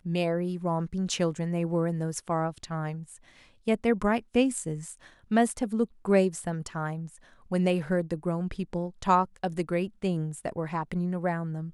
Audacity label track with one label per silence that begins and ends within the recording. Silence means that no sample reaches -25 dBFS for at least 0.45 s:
2.910000	3.680000	silence
4.730000	5.320000	silence
6.920000	7.520000	silence